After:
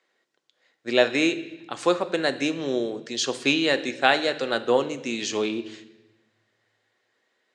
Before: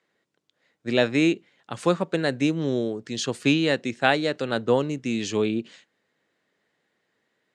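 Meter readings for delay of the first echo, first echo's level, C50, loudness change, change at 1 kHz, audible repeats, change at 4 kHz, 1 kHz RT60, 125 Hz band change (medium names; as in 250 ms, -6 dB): no echo, no echo, 13.5 dB, 0.0 dB, +2.0 dB, no echo, +3.5 dB, 0.90 s, -10.5 dB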